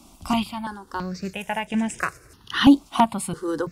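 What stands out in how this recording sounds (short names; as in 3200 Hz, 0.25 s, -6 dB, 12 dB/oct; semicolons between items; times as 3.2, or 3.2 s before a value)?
random-step tremolo 2.3 Hz, depth 55%; notches that jump at a steady rate 3 Hz 470–4300 Hz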